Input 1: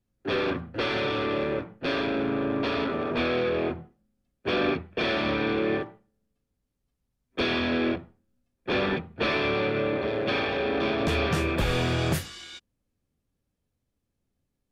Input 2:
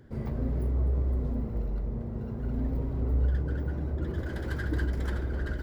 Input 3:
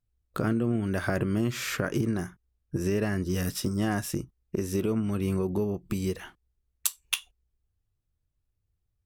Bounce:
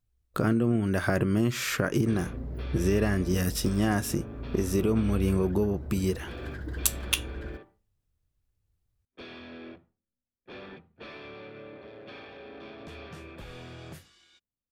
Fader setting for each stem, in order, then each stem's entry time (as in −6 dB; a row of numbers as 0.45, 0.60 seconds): −18.5, −7.0, +2.0 decibels; 1.80, 1.95, 0.00 seconds